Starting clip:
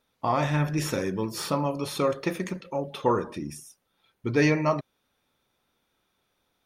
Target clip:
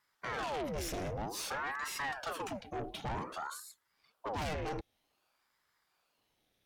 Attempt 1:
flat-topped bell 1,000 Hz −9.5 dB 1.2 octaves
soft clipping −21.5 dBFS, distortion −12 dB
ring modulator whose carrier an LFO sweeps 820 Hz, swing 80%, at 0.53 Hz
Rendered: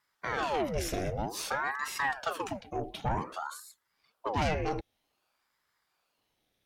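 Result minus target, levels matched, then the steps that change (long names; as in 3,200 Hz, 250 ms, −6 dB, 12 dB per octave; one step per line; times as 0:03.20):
soft clipping: distortion −7 dB
change: soft clipping −32 dBFS, distortion −5 dB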